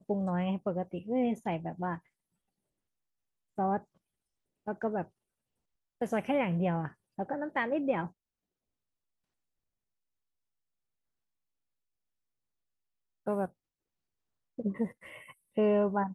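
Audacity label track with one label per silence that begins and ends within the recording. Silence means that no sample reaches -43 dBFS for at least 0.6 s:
1.980000	3.580000	silence
3.790000	4.670000	silence
5.040000	6.010000	silence
8.080000	13.270000	silence
13.470000	14.580000	silence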